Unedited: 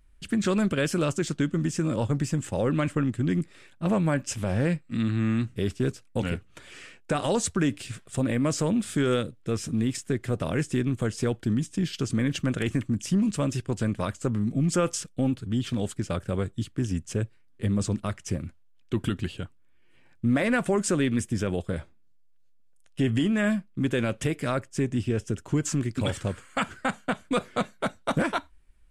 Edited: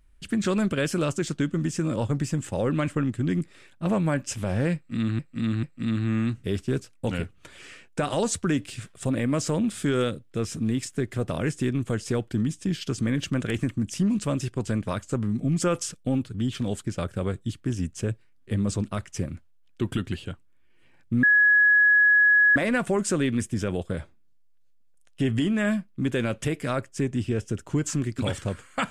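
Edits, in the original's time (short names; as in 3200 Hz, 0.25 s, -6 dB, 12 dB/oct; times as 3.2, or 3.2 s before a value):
4.75–5.19 loop, 3 plays
20.35 add tone 1680 Hz -14.5 dBFS 1.33 s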